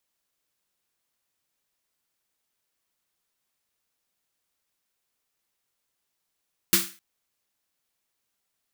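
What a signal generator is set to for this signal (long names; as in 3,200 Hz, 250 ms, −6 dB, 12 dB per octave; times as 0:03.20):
synth snare length 0.26 s, tones 190 Hz, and 340 Hz, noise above 1,200 Hz, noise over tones 9 dB, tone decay 0.29 s, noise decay 0.35 s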